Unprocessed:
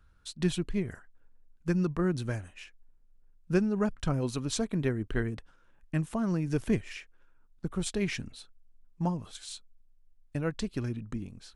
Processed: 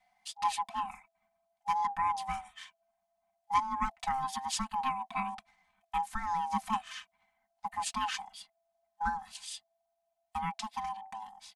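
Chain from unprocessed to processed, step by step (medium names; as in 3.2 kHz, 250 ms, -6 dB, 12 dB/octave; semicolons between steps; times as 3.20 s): ring modulator 660 Hz; elliptic band-stop 210–820 Hz, stop band 40 dB; comb 3.9 ms, depth 93%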